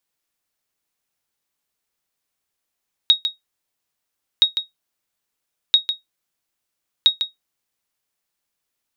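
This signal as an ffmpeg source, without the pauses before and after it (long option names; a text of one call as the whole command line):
ffmpeg -f lavfi -i "aevalsrc='0.631*(sin(2*PI*3770*mod(t,1.32))*exp(-6.91*mod(t,1.32)/0.15)+0.355*sin(2*PI*3770*max(mod(t,1.32)-0.15,0))*exp(-6.91*max(mod(t,1.32)-0.15,0)/0.15))':duration=5.28:sample_rate=44100" out.wav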